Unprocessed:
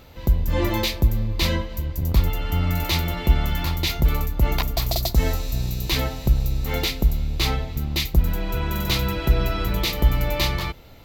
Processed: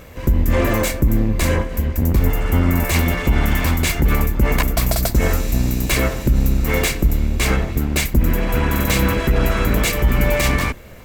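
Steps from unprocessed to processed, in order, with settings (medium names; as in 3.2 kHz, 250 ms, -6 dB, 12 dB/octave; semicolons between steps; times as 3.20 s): comb filter that takes the minimum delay 1.8 ms; graphic EQ 250/2000/4000/8000 Hz +9/+6/-8/+5 dB; peak limiter -13 dBFS, peak gain reduction 8.5 dB; 0.72–2.94 s: dynamic bell 3.3 kHz, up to -5 dB, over -42 dBFS, Q 0.74; trim +6.5 dB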